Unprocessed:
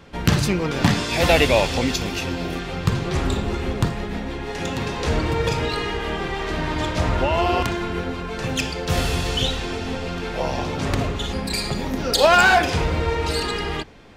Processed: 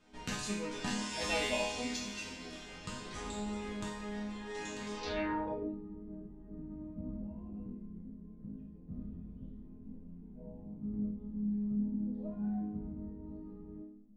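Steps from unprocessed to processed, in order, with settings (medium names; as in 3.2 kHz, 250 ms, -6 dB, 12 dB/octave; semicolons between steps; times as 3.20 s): chord resonator G#3 minor, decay 0.68 s; low-pass sweep 8.1 kHz -> 200 Hz, 4.95–5.78 s; trim +5 dB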